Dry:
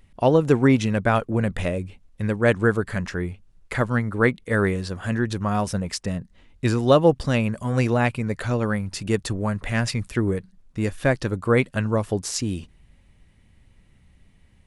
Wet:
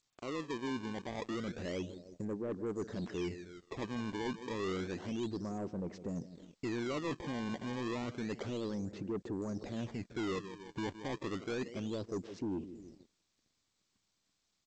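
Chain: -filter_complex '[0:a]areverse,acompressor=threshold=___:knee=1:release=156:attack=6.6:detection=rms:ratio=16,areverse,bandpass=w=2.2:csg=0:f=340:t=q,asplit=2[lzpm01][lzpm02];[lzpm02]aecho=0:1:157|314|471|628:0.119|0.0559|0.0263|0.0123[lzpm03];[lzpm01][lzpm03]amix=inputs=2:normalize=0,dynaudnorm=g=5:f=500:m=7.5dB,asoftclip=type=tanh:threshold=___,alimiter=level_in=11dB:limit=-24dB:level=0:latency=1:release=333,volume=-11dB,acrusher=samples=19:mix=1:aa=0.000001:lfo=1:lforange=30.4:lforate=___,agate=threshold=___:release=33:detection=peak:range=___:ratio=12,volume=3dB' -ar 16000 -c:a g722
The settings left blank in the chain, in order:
-26dB, -27dB, 0.3, -59dB, -33dB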